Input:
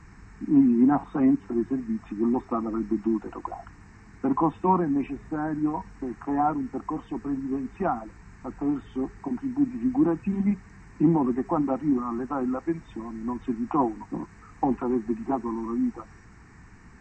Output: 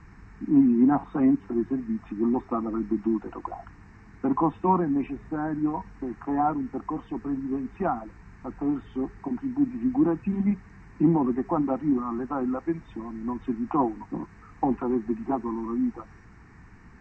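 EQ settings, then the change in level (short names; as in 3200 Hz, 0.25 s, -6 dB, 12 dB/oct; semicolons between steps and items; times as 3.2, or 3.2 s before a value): air absorption 99 m; 0.0 dB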